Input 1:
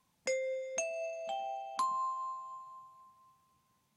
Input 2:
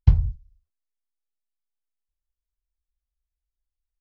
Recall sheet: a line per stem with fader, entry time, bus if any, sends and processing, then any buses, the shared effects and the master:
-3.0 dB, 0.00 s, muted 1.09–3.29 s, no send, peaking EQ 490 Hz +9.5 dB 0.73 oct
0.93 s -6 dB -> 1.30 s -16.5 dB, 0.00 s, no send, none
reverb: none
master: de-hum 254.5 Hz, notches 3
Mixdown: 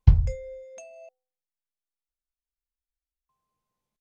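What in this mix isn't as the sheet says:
stem 1 -3.0 dB -> -12.0 dB; stem 2 -6.0 dB -> 0.0 dB

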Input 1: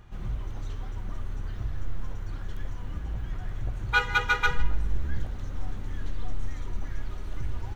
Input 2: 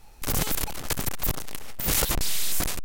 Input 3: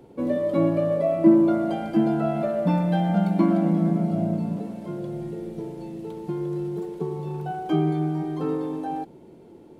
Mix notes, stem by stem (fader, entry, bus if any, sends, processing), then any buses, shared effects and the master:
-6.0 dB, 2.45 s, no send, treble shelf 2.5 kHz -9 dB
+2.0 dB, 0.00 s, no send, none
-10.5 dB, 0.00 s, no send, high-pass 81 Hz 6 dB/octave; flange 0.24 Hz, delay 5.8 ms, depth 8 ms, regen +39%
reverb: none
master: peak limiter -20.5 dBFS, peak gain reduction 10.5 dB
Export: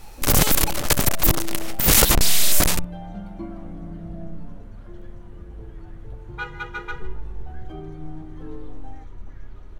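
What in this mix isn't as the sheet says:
stem 2 +2.0 dB -> +9.0 dB; master: missing peak limiter -20.5 dBFS, peak gain reduction 10.5 dB

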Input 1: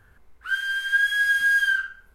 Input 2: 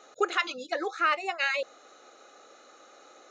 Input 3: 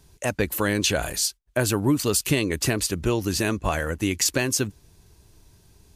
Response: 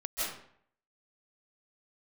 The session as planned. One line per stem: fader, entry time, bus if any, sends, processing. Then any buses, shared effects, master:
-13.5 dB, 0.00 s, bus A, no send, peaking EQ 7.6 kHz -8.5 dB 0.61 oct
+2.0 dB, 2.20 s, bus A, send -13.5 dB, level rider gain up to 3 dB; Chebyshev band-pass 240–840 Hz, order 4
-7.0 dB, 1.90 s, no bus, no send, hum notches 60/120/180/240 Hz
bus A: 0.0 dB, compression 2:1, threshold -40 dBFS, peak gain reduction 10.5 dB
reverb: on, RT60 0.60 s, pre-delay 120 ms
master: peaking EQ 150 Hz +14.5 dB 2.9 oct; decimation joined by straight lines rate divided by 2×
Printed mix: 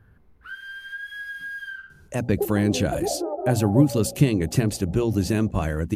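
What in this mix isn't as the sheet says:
stem 1 -13.5 dB -> -7.0 dB; master: missing decimation joined by straight lines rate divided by 2×

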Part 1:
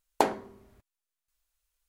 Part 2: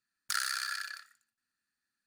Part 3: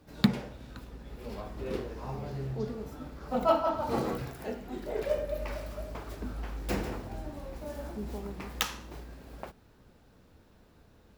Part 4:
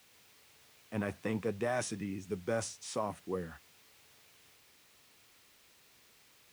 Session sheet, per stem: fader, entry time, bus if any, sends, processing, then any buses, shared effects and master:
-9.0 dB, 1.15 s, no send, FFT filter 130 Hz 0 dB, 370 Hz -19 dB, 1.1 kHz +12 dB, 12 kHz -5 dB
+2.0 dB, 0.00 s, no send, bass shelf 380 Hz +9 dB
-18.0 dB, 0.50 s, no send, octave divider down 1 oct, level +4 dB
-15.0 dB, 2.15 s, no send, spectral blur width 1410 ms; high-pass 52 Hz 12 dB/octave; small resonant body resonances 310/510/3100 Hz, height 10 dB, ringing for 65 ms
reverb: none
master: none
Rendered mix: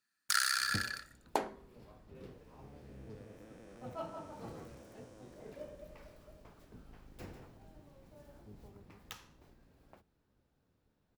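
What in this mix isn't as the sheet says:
stem 1: missing FFT filter 130 Hz 0 dB, 370 Hz -19 dB, 1.1 kHz +12 dB, 12 kHz -5 dB; stem 2: missing bass shelf 380 Hz +9 dB; master: extra bass shelf 100 Hz -8 dB

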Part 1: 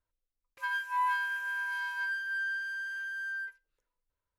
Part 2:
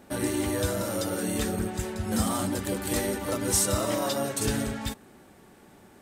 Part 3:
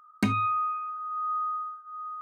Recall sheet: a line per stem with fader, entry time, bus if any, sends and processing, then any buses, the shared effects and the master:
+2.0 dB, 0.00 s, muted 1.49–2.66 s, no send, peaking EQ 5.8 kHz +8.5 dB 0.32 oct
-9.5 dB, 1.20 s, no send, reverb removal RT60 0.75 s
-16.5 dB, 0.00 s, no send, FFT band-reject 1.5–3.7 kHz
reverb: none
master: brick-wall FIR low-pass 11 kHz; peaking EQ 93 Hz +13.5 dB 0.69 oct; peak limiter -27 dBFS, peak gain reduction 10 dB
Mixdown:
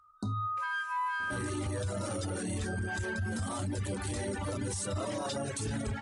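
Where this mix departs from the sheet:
stem 1: missing peaking EQ 5.8 kHz +8.5 dB 0.32 oct; stem 2 -9.5 dB -> +2.5 dB; stem 3 -16.5 dB -> -7.5 dB

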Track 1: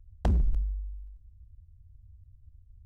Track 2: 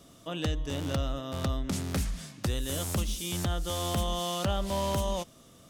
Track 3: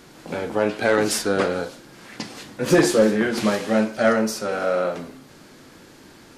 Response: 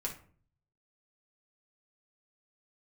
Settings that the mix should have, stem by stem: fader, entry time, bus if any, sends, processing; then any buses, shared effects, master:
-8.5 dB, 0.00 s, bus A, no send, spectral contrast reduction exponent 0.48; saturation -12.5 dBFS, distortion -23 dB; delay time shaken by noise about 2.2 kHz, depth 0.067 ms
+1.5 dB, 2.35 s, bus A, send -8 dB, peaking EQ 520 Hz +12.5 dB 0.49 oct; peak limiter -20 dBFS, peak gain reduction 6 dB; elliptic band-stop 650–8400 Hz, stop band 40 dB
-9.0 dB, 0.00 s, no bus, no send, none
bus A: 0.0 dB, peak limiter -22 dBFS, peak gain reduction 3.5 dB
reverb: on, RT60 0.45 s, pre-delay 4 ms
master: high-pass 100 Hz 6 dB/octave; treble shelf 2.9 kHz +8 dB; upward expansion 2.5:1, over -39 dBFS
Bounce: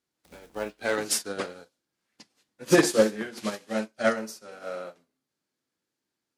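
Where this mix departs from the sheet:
stem 1: missing saturation -12.5 dBFS, distortion -23 dB; stem 2: muted; stem 3 -9.0 dB -> -1.5 dB; reverb: off

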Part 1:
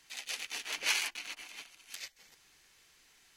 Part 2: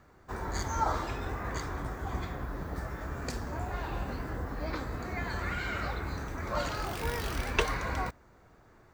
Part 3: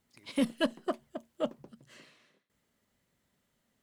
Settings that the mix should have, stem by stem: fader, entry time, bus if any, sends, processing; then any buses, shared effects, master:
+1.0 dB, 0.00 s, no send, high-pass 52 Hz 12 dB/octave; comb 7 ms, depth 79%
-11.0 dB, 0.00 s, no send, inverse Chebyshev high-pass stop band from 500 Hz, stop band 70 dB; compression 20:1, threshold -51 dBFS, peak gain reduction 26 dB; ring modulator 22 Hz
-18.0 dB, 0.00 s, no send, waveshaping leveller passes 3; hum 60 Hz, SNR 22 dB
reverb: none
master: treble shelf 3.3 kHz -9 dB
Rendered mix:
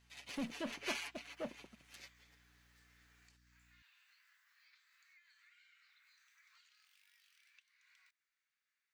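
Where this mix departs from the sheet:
stem 1 +1.0 dB -> -9.0 dB; stem 2: missing ring modulator 22 Hz

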